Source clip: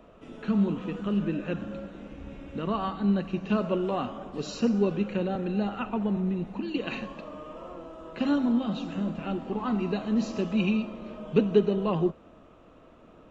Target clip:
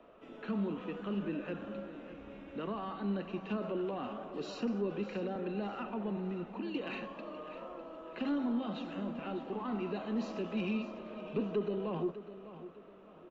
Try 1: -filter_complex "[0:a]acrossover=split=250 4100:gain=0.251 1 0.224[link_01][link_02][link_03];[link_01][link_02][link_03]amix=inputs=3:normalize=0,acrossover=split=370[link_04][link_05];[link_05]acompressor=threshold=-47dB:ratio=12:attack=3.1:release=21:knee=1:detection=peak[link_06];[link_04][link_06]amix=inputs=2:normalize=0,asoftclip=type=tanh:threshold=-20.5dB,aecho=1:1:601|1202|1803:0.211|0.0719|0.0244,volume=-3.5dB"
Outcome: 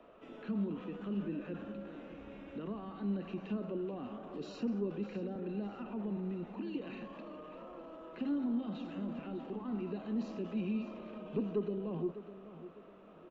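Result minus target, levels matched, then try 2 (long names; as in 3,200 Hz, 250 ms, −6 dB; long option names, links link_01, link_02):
downward compressor: peak gain reduction +10 dB
-filter_complex "[0:a]acrossover=split=250 4100:gain=0.251 1 0.224[link_01][link_02][link_03];[link_01][link_02][link_03]amix=inputs=3:normalize=0,acrossover=split=370[link_04][link_05];[link_05]acompressor=threshold=-36dB:ratio=12:attack=3.1:release=21:knee=1:detection=peak[link_06];[link_04][link_06]amix=inputs=2:normalize=0,asoftclip=type=tanh:threshold=-20.5dB,aecho=1:1:601|1202|1803:0.211|0.0719|0.0244,volume=-3.5dB"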